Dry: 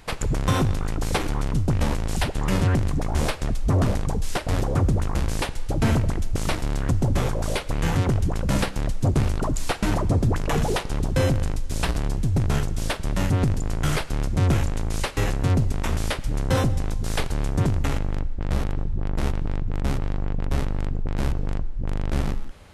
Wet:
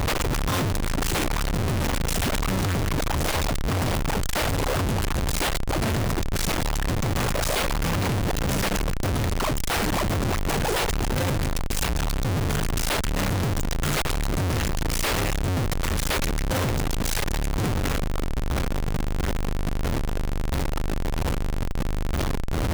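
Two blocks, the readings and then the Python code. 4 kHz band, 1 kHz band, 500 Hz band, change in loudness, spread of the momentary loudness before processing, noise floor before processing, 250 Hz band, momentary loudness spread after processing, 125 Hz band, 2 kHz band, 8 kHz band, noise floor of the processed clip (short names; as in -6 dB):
+4.5 dB, +2.0 dB, +0.5 dB, -0.5 dB, 6 LU, -31 dBFS, -1.5 dB, 4 LU, -3.0 dB, +3.5 dB, +5.0 dB, -26 dBFS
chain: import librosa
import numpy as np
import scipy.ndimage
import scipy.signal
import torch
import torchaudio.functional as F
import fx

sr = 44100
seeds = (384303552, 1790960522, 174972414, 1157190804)

y = fx.tube_stage(x, sr, drive_db=27.0, bias=0.5)
y = fx.schmitt(y, sr, flips_db=-50.5)
y = y * librosa.db_to_amplitude(7.0)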